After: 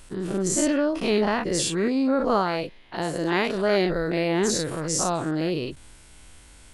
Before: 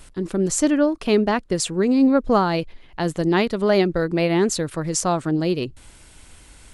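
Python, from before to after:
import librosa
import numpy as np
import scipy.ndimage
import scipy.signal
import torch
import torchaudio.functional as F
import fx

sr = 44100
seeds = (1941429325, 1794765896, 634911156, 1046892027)

y = fx.spec_dilate(x, sr, span_ms=120)
y = fx.low_shelf(y, sr, hz=120.0, db=-9.0, at=(1.88, 3.55))
y = y * 10.0 ** (-7.5 / 20.0)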